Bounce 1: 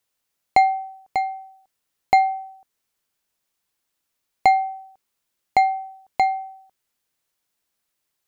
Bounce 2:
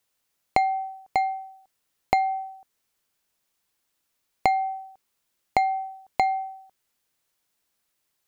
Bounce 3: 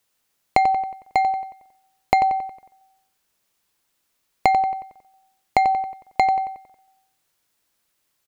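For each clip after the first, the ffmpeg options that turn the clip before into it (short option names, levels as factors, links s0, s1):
-af "acompressor=threshold=0.1:ratio=6,volume=1.19"
-filter_complex "[0:a]asplit=2[s0][s1];[s1]adelay=91,lowpass=f=4000:p=1,volume=0.376,asplit=2[s2][s3];[s3]adelay=91,lowpass=f=4000:p=1,volume=0.5,asplit=2[s4][s5];[s5]adelay=91,lowpass=f=4000:p=1,volume=0.5,asplit=2[s6][s7];[s7]adelay=91,lowpass=f=4000:p=1,volume=0.5,asplit=2[s8][s9];[s9]adelay=91,lowpass=f=4000:p=1,volume=0.5,asplit=2[s10][s11];[s11]adelay=91,lowpass=f=4000:p=1,volume=0.5[s12];[s0][s2][s4][s6][s8][s10][s12]amix=inputs=7:normalize=0,volume=1.58"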